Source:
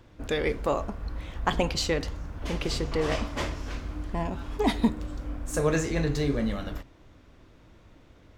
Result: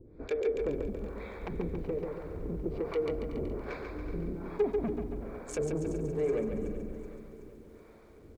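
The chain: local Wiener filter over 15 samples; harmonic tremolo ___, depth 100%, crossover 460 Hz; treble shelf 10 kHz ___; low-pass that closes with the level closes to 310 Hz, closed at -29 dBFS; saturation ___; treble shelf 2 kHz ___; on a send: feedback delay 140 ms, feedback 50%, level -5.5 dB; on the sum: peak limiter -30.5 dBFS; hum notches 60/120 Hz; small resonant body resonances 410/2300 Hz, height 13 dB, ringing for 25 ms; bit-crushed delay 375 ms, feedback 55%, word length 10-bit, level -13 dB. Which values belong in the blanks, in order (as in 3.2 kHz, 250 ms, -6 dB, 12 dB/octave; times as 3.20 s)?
1.2 Hz, -7 dB, -30 dBFS, +9.5 dB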